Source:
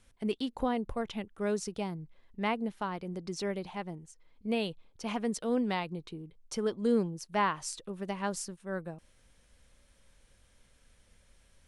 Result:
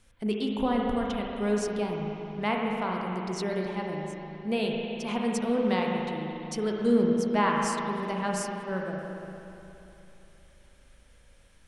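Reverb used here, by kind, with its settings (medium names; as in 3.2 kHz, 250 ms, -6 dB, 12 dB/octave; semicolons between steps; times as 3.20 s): spring tank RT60 3.1 s, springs 38/58 ms, chirp 80 ms, DRR -1 dB; trim +2 dB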